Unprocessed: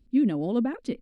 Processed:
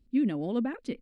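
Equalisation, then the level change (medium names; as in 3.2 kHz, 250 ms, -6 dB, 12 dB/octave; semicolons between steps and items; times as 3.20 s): dynamic bell 2.2 kHz, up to +5 dB, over -49 dBFS, Q 1.1; -4.0 dB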